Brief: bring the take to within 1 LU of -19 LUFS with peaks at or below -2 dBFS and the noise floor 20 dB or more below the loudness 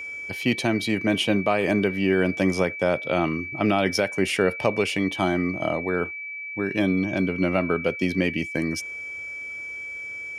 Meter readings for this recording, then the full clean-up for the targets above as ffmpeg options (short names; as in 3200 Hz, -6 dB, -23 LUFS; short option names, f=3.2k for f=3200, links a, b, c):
steady tone 2300 Hz; tone level -32 dBFS; loudness -24.5 LUFS; peak -9.0 dBFS; loudness target -19.0 LUFS
-> -af "bandreject=f=2.3k:w=30"
-af "volume=5.5dB"